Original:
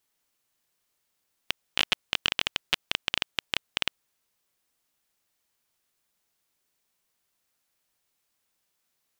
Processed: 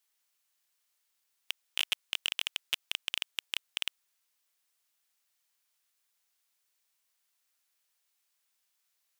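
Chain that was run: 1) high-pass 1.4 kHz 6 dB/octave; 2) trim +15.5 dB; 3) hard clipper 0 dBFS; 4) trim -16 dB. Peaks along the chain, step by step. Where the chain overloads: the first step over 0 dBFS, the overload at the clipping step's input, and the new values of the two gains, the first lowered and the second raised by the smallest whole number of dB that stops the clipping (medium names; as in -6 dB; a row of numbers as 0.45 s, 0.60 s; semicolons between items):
-6.0 dBFS, +9.5 dBFS, 0.0 dBFS, -16.0 dBFS; step 2, 9.5 dB; step 2 +5.5 dB, step 4 -6 dB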